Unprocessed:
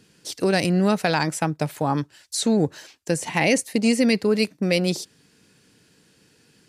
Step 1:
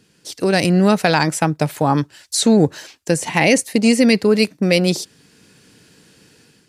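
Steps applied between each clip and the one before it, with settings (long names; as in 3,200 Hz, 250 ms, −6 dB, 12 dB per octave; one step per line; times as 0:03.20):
automatic gain control gain up to 8 dB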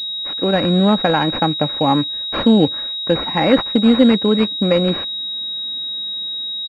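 loose part that buzzes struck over −27 dBFS, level −26 dBFS
comb filter 3.7 ms, depth 36%
switching amplifier with a slow clock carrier 3,800 Hz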